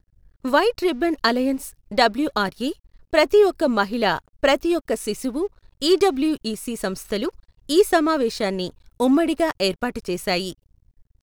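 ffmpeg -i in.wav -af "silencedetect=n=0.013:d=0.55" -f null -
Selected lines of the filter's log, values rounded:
silence_start: 10.53
silence_end: 11.22 | silence_duration: 0.70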